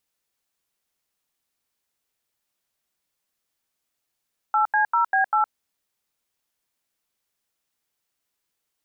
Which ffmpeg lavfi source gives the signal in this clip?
-f lavfi -i "aevalsrc='0.106*clip(min(mod(t,0.197),0.113-mod(t,0.197))/0.002,0,1)*(eq(floor(t/0.197),0)*(sin(2*PI*852*mod(t,0.197))+sin(2*PI*1336*mod(t,0.197)))+eq(floor(t/0.197),1)*(sin(2*PI*852*mod(t,0.197))+sin(2*PI*1633*mod(t,0.197)))+eq(floor(t/0.197),2)*(sin(2*PI*941*mod(t,0.197))+sin(2*PI*1336*mod(t,0.197)))+eq(floor(t/0.197),3)*(sin(2*PI*770*mod(t,0.197))+sin(2*PI*1633*mod(t,0.197)))+eq(floor(t/0.197),4)*(sin(2*PI*852*mod(t,0.197))+sin(2*PI*1336*mod(t,0.197))))':d=0.985:s=44100"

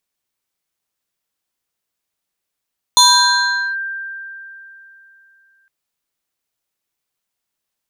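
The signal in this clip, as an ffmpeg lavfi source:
-f lavfi -i "aevalsrc='0.562*pow(10,-3*t/3.21)*sin(2*PI*1580*t+2.4*clip(1-t/0.79,0,1)*sin(2*PI*1.62*1580*t))':d=2.71:s=44100"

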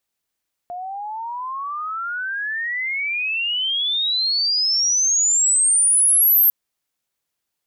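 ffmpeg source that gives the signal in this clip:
-f lavfi -i "aevalsrc='pow(10,(-27.5+16.5*t/5.8)/20)*sin(2*PI*700*5.8/log(13000/700)*(exp(log(13000/700)*t/5.8)-1))':d=5.8:s=44100"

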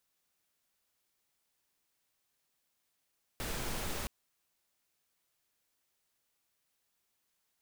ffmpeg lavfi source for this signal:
-f lavfi -i "anoisesrc=c=pink:a=0.0684:d=0.67:r=44100:seed=1"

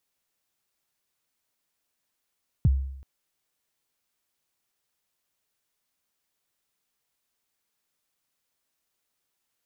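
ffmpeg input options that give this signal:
-f lavfi -i "aevalsrc='0.2*pow(10,-3*t/0.76)*sin(2*PI*(170*0.032/log(67/170)*(exp(log(67/170)*min(t,0.032)/0.032)-1)+67*max(t-0.032,0)))':d=0.38:s=44100"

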